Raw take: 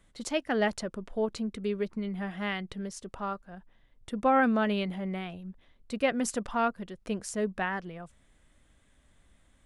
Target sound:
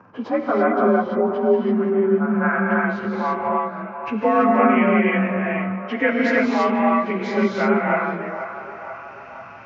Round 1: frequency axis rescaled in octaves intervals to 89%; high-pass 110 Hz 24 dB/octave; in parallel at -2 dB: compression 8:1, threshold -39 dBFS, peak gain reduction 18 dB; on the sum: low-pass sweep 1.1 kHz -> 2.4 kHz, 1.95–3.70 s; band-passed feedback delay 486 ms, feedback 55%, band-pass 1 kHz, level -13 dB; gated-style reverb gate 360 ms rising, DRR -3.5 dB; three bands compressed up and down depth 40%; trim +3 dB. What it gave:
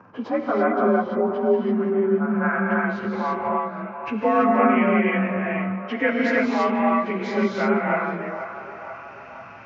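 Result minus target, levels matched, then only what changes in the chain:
compression: peak gain reduction +9.5 dB
change: compression 8:1, threshold -28 dBFS, peak gain reduction 8.5 dB

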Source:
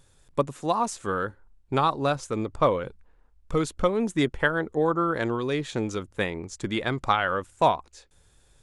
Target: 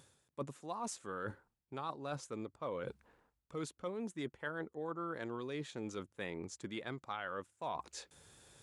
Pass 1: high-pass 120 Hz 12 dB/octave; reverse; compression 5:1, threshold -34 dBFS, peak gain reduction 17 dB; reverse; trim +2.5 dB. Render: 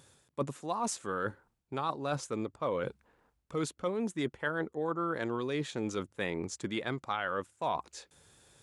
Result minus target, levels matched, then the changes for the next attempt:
compression: peak gain reduction -8 dB
change: compression 5:1, threshold -44 dBFS, peak gain reduction 25 dB

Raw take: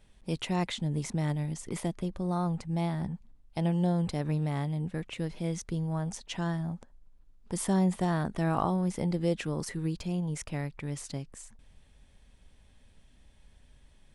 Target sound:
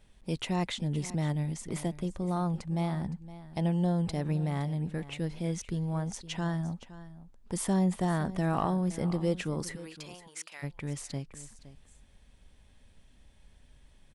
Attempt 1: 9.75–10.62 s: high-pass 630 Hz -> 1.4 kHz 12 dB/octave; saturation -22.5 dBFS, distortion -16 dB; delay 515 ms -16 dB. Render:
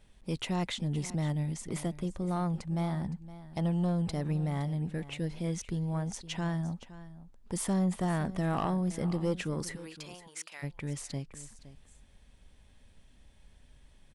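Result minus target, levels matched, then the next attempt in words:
saturation: distortion +10 dB
9.75–10.62 s: high-pass 630 Hz -> 1.4 kHz 12 dB/octave; saturation -15.5 dBFS, distortion -27 dB; delay 515 ms -16 dB

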